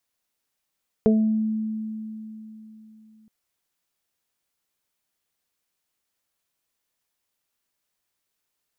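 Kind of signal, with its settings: additive tone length 2.22 s, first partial 218 Hz, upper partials 2/-12 dB, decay 3.58 s, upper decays 0.24/0.56 s, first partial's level -15 dB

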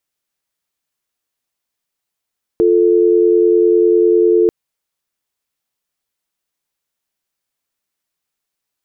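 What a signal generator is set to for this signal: call progress tone dial tone, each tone -11 dBFS 1.89 s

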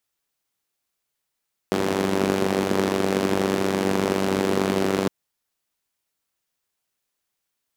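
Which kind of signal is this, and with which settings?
four-cylinder engine model, steady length 3.36 s, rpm 2900, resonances 230/350 Hz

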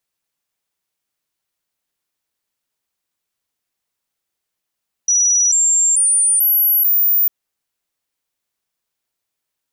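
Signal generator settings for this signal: stepped sine 5860 Hz up, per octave 3, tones 5, 0.44 s, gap 0.00 s -11 dBFS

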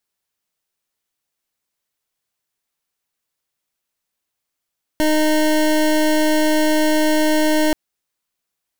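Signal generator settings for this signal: pulse 308 Hz, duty 25% -15.5 dBFS 2.73 s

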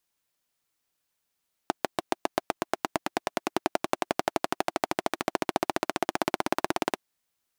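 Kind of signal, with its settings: single-cylinder engine model, changing speed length 5.29 s, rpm 800, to 2100, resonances 350/670 Hz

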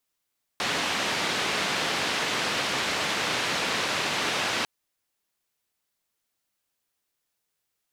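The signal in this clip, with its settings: noise band 140–3500 Hz, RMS -27.5 dBFS 4.05 s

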